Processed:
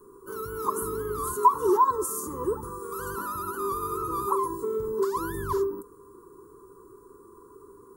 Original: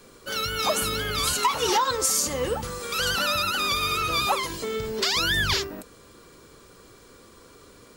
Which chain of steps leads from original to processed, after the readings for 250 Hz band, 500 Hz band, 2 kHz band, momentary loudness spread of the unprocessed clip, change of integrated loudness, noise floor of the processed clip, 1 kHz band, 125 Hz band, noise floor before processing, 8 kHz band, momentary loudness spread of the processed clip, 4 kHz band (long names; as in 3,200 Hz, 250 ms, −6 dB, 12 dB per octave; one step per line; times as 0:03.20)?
+1.5 dB, +1.5 dB, −17.0 dB, 8 LU, −4.0 dB, −53 dBFS, +1.0 dB, −6.0 dB, −52 dBFS, −10.5 dB, 12 LU, −29.5 dB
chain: drawn EQ curve 250 Hz 0 dB, 400 Hz +15 dB, 690 Hz −30 dB, 1,000 Hz +13 dB, 2,400 Hz −30 dB, 5,000 Hz −21 dB, 10,000 Hz +2 dB
level −6 dB